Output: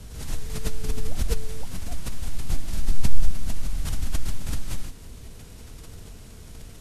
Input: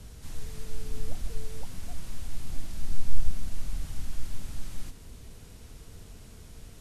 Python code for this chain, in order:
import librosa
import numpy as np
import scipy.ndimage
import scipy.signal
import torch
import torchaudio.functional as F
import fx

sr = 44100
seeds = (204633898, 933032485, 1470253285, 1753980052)

y = fx.pre_swell(x, sr, db_per_s=76.0)
y = y * 10.0 ** (4.0 / 20.0)